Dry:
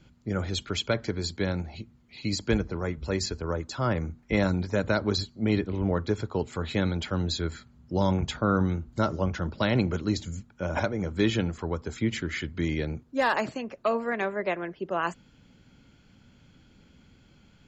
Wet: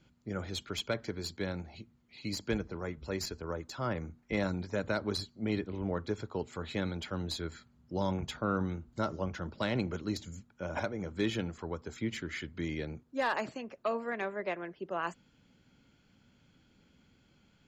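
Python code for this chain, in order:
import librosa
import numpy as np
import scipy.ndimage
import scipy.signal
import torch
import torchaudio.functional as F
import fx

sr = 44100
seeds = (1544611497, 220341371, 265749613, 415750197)

y = fx.tracing_dist(x, sr, depth_ms=0.022)
y = fx.low_shelf(y, sr, hz=110.0, db=-6.5)
y = y * 10.0 ** (-6.5 / 20.0)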